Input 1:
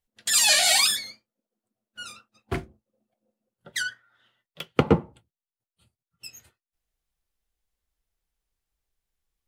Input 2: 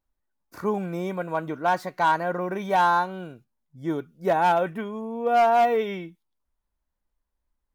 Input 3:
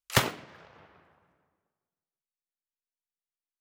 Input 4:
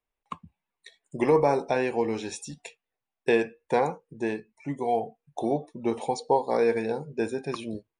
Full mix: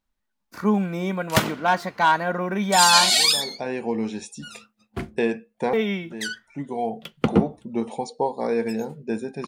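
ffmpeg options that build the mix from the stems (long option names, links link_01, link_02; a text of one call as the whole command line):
ffmpeg -i stem1.wav -i stem2.wav -i stem3.wav -i stem4.wav -filter_complex "[0:a]adynamicequalizer=threshold=0.0178:dfrequency=4400:dqfactor=1.1:tfrequency=4400:tqfactor=1.1:attack=5:release=100:ratio=0.375:range=3.5:mode=boostabove:tftype=bell,adelay=2450,volume=-3dB[link_01];[1:a]equalizer=frequency=3000:width=0.43:gain=7.5,bandreject=frequency=347.5:width_type=h:width=4,bandreject=frequency=695:width_type=h:width=4,bandreject=frequency=1042.5:width_type=h:width=4,bandreject=frequency=1390:width_type=h:width=4,bandreject=frequency=1737.5:width_type=h:width=4,bandreject=frequency=2085:width_type=h:width=4,bandreject=frequency=2432.5:width_type=h:width=4,bandreject=frequency=2780:width_type=h:width=4,bandreject=frequency=3127.5:width_type=h:width=4,bandreject=frequency=3475:width_type=h:width=4,bandreject=frequency=3822.5:width_type=h:width=4,bandreject=frequency=4170:width_type=h:width=4,bandreject=frequency=4517.5:width_type=h:width=4,bandreject=frequency=4865:width_type=h:width=4,bandreject=frequency=5212.5:width_type=h:width=4,bandreject=frequency=5560:width_type=h:width=4,bandreject=frequency=5907.5:width_type=h:width=4,bandreject=frequency=6255:width_type=h:width=4,bandreject=frequency=6602.5:width_type=h:width=4,bandreject=frequency=6950:width_type=h:width=4,bandreject=frequency=7297.5:width_type=h:width=4,bandreject=frequency=7645:width_type=h:width=4,bandreject=frequency=7992.5:width_type=h:width=4,bandreject=frequency=8340:width_type=h:width=4,bandreject=frequency=8687.5:width_type=h:width=4,bandreject=frequency=9035:width_type=h:width=4,bandreject=frequency=9382.5:width_type=h:width=4,bandreject=frequency=9730:width_type=h:width=4,bandreject=frequency=10077.5:width_type=h:width=4,bandreject=frequency=10425:width_type=h:width=4,bandreject=frequency=10772.5:width_type=h:width=4,bandreject=frequency=11120:width_type=h:width=4,bandreject=frequency=11467.5:width_type=h:width=4,bandreject=frequency=11815:width_type=h:width=4,bandreject=frequency=12162.5:width_type=h:width=4,volume=-0.5dB,asplit=3[link_02][link_03][link_04];[link_02]atrim=end=3.1,asetpts=PTS-STARTPTS,afade=type=out:start_time=3.096:duration=0.004:curve=hsin[link_05];[link_03]atrim=start=3.1:end=5.73,asetpts=PTS-STARTPTS,volume=0[link_06];[link_04]atrim=start=5.73,asetpts=PTS-STARTPTS,afade=type=in:duration=0.004:curve=hsin[link_07];[link_05][link_06][link_07]concat=n=3:v=0:a=1,asplit=2[link_08][link_09];[2:a]adelay=1200,volume=2dB[link_10];[3:a]adelay=1900,volume=-1.5dB[link_11];[link_09]apad=whole_len=436482[link_12];[link_11][link_12]sidechaincompress=threshold=-39dB:ratio=8:attack=16:release=494[link_13];[link_01][link_08][link_10][link_13]amix=inputs=4:normalize=0,equalizer=frequency=210:width_type=o:width=0.37:gain=11" out.wav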